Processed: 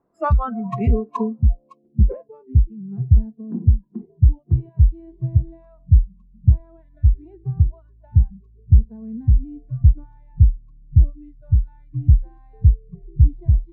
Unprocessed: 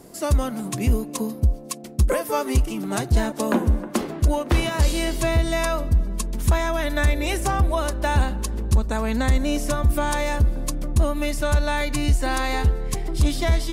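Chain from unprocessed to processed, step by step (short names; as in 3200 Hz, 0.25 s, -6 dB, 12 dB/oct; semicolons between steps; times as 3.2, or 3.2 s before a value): spectral noise reduction 29 dB; low-pass sweep 1200 Hz -> 120 Hz, 1.3–2.46; gain +4 dB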